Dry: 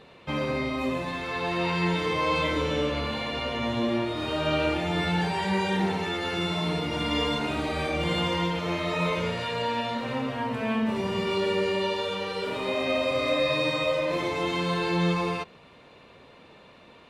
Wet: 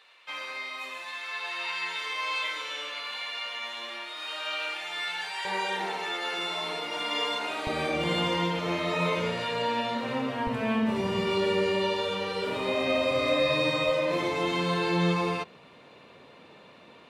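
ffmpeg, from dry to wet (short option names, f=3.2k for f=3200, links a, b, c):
-af "asetnsamples=n=441:p=0,asendcmd='5.45 highpass f 580;7.67 highpass f 150;10.47 highpass f 58;13.89 highpass f 120',highpass=1.4k"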